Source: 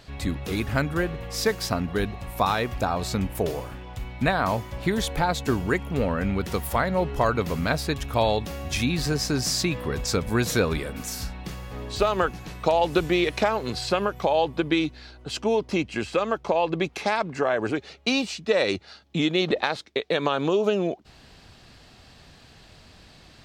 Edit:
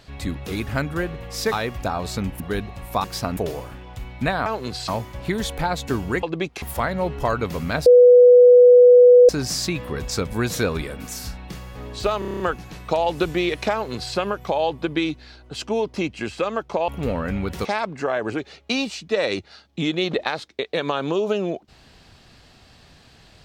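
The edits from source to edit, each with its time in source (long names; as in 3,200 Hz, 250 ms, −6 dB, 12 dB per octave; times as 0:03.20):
0:01.52–0:01.85: swap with 0:02.49–0:03.37
0:05.81–0:06.58: swap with 0:16.63–0:17.02
0:07.82–0:09.25: beep over 492 Hz −6.5 dBFS
0:12.15: stutter 0.03 s, 8 plays
0:13.48–0:13.90: duplicate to 0:04.46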